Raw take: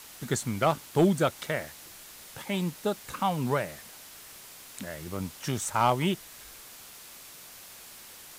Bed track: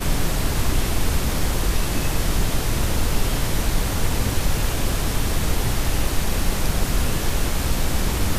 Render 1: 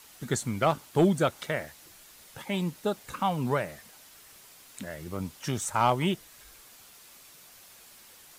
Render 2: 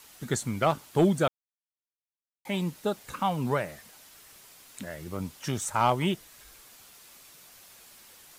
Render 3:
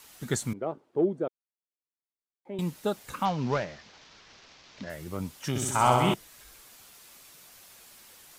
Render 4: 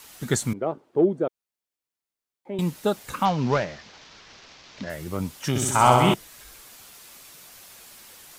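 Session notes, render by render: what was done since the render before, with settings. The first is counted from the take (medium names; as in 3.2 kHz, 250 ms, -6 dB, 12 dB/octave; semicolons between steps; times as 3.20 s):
noise reduction 6 dB, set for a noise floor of -48 dBFS
1.28–2.45 s: mute
0.53–2.59 s: band-pass filter 390 Hz, Q 2.1; 3.25–4.90 s: CVSD coder 32 kbps; 5.49–6.14 s: flutter echo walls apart 11.1 m, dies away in 1.2 s
trim +5.5 dB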